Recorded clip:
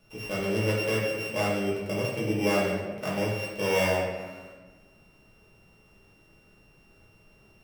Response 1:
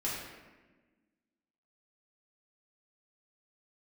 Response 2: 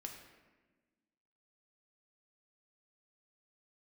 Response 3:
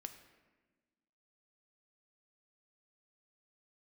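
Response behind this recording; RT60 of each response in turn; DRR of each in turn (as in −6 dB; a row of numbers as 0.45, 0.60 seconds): 1; 1.3, 1.3, 1.3 seconds; −7.0, 2.0, 7.0 decibels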